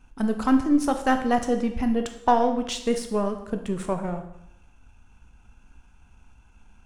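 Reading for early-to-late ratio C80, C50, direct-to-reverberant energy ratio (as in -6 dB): 12.5 dB, 9.5 dB, 6.0 dB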